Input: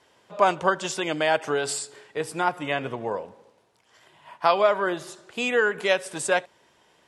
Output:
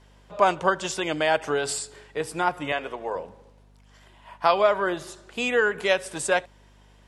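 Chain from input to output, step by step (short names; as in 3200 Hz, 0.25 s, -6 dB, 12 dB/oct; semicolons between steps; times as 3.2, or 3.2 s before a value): 2.72–3.16 HPF 390 Hz 12 dB/oct; hum 50 Hz, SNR 29 dB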